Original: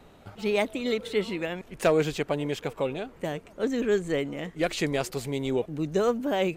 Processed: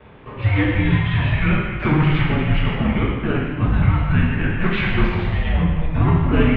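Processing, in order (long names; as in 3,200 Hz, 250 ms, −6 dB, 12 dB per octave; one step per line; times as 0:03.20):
leveller curve on the samples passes 2
reversed playback
upward compression, threshold −39 dBFS
reversed playback
brickwall limiter −18 dBFS, peak gain reduction 4 dB
reverb whose tail is shaped and stops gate 420 ms falling, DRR −6 dB
single-sideband voice off tune −320 Hz 160–3,200 Hz
level +2 dB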